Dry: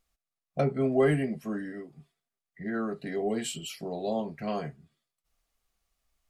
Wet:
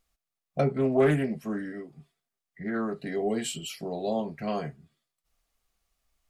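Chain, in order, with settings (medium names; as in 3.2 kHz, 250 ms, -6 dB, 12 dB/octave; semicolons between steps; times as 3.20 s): 0.71–3.03 s: loudspeaker Doppler distortion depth 0.22 ms; trim +1.5 dB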